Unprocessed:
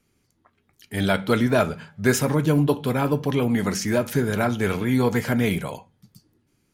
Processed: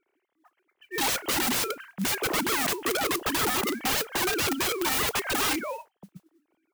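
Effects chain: sine-wave speech; modulation noise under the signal 19 dB; wrapped overs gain 21.5 dB

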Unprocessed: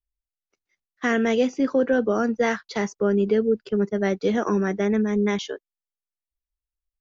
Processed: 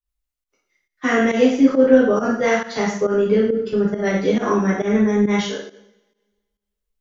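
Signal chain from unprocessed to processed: two-slope reverb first 0.61 s, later 1.6 s, from -26 dB, DRR -7 dB; pump 137 bpm, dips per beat 1, -14 dB, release 0.12 s; gain -2 dB

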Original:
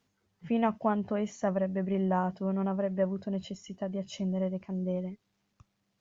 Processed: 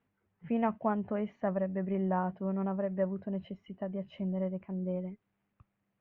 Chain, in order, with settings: LPF 2500 Hz 24 dB/oct; gain -2.5 dB

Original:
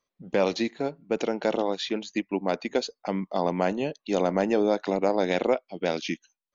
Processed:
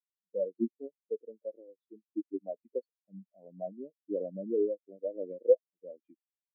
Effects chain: rotary speaker horn 0.7 Hz, later 6.7 Hz, at 4.67; spectral expander 4:1

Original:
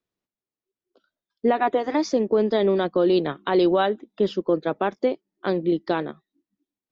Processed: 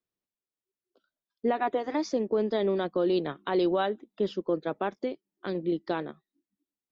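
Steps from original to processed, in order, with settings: 4.9–5.55 dynamic EQ 840 Hz, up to -8 dB, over -37 dBFS, Q 0.9; gain -6.5 dB

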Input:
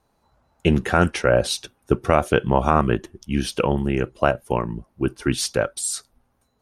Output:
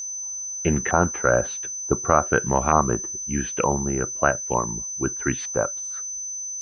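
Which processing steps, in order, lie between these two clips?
LFO low-pass saw up 1.1 Hz 970–2100 Hz; whine 6100 Hz -25 dBFS; gain -4 dB

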